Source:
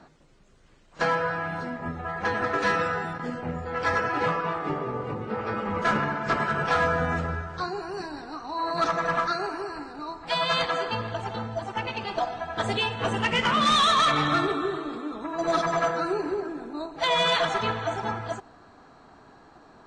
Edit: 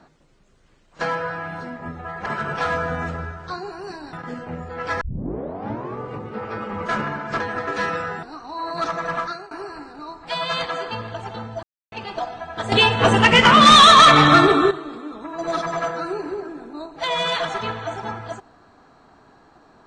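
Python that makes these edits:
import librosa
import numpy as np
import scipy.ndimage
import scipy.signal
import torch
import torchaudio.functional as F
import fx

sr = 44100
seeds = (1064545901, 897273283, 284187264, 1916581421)

y = fx.edit(x, sr, fx.swap(start_s=2.26, length_s=0.83, other_s=6.36, other_length_s=1.87),
    fx.tape_start(start_s=3.97, length_s=0.96),
    fx.fade_out_to(start_s=9.22, length_s=0.29, floor_db=-17.5),
    fx.silence(start_s=11.63, length_s=0.29),
    fx.clip_gain(start_s=12.72, length_s=1.99, db=11.5), tone=tone)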